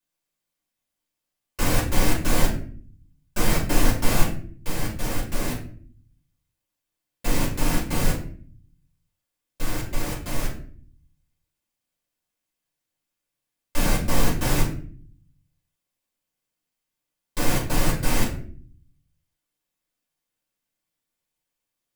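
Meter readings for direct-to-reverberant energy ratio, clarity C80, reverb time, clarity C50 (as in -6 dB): -5.5 dB, 11.5 dB, 0.50 s, 7.5 dB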